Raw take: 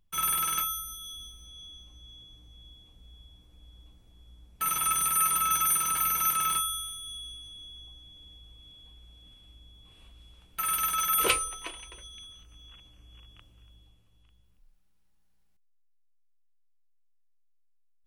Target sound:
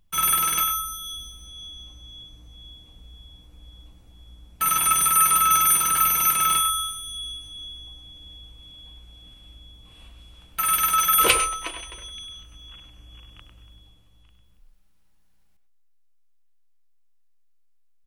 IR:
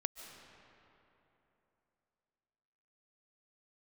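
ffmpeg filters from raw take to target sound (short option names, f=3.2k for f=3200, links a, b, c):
-filter_complex "[0:a]equalizer=f=400:t=o:w=0.23:g=-4.5,asplit=2[a][b];[b]adelay=100,highpass=300,lowpass=3.4k,asoftclip=type=hard:threshold=-23.5dB,volume=-7dB[c];[a][c]amix=inputs=2:normalize=0[d];[1:a]atrim=start_sample=2205,atrim=end_sample=6174[e];[d][e]afir=irnorm=-1:irlink=0,volume=8dB"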